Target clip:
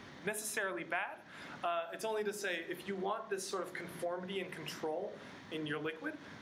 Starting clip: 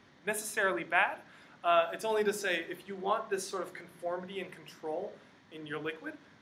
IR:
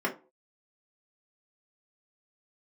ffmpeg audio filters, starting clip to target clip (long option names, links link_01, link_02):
-af "acompressor=threshold=-46dB:ratio=4,volume=8.5dB"